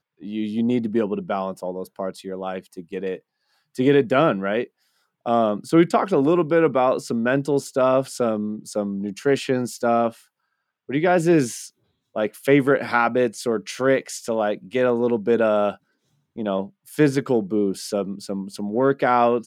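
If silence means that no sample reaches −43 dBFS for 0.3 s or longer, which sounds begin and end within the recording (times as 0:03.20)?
0:03.75–0:04.67
0:05.26–0:10.21
0:10.89–0:11.69
0:12.15–0:15.75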